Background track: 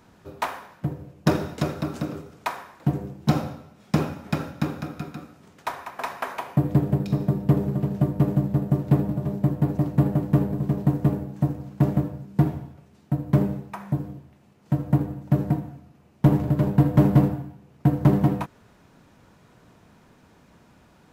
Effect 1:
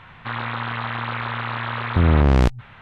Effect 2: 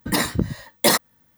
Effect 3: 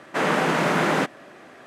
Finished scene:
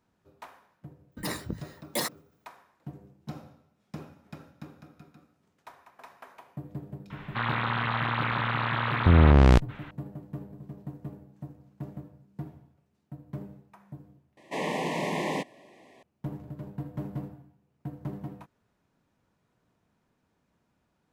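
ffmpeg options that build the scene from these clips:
ffmpeg -i bed.wav -i cue0.wav -i cue1.wav -i cue2.wav -filter_complex "[0:a]volume=-19dB[link_01];[2:a]agate=range=-33dB:threshold=-57dB:ratio=3:release=100:detection=peak[link_02];[3:a]asuperstop=centerf=1400:order=12:qfactor=2.1[link_03];[link_01]asplit=2[link_04][link_05];[link_04]atrim=end=14.374[link_06];[link_03]atrim=end=1.66,asetpts=PTS-STARTPTS,volume=-8dB[link_07];[link_05]atrim=start=16.026[link_08];[link_02]atrim=end=1.37,asetpts=PTS-STARTPTS,volume=-13.5dB,afade=type=in:duration=0.004:curve=hsin,afade=type=out:start_time=1.366:duration=0.004:curve=hsin,adelay=1110[link_09];[1:a]atrim=end=2.81,asetpts=PTS-STARTPTS,volume=-1.5dB,afade=type=in:duration=0.004:curve=hsin,afade=type=out:start_time=2.806:duration=0.004:curve=hsin,adelay=7100[link_10];[link_06][link_07]acrossfade=duration=0.004:curve1=hsin:curve2=hsin[link_11];[link_11][link_08]acrossfade=duration=0.004:curve1=hsin:curve2=hsin[link_12];[link_12][link_09][link_10]amix=inputs=3:normalize=0" out.wav

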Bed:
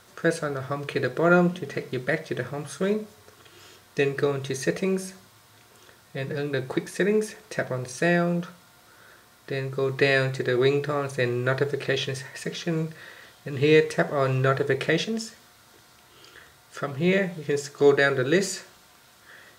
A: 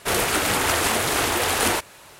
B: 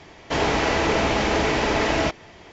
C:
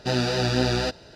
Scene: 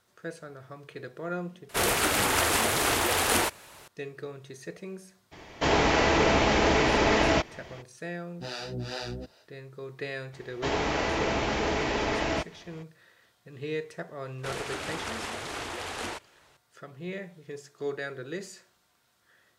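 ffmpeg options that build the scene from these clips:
ffmpeg -i bed.wav -i cue0.wav -i cue1.wav -i cue2.wav -filter_complex "[1:a]asplit=2[link_01][link_02];[2:a]asplit=2[link_03][link_04];[0:a]volume=-15dB[link_05];[3:a]acrossover=split=460[link_06][link_07];[link_06]aeval=exprs='val(0)*(1-1/2+1/2*cos(2*PI*2.4*n/s))':channel_layout=same[link_08];[link_07]aeval=exprs='val(0)*(1-1/2-1/2*cos(2*PI*2.4*n/s))':channel_layout=same[link_09];[link_08][link_09]amix=inputs=2:normalize=0[link_10];[link_02]lowpass=6700[link_11];[link_05]asplit=2[link_12][link_13];[link_12]atrim=end=1.694[link_14];[link_01]atrim=end=2.19,asetpts=PTS-STARTPTS,volume=-3.5dB[link_15];[link_13]atrim=start=3.876[link_16];[link_03]atrim=end=2.52,asetpts=PTS-STARTPTS,volume=-1.5dB,afade=type=in:duration=0.02,afade=type=out:start_time=2.5:duration=0.02,adelay=5310[link_17];[link_10]atrim=end=1.15,asetpts=PTS-STARTPTS,volume=-7.5dB,afade=type=in:duration=0.1,afade=type=out:start_time=1.05:duration=0.1,adelay=8350[link_18];[link_04]atrim=end=2.52,asetpts=PTS-STARTPTS,volume=-7dB,afade=type=in:duration=0.02,afade=type=out:start_time=2.5:duration=0.02,adelay=10320[link_19];[link_11]atrim=end=2.19,asetpts=PTS-STARTPTS,volume=-13.5dB,afade=type=in:duration=0.004:curve=hsin,afade=type=out:start_time=2.186:duration=0.004:curve=hsin,adelay=14380[link_20];[link_14][link_15]acrossfade=duration=0.004:curve1=hsin:curve2=hsin[link_21];[link_21][link_16]acrossfade=duration=0.004:curve1=hsin:curve2=hsin[link_22];[link_22][link_17][link_18][link_19][link_20]amix=inputs=5:normalize=0" out.wav

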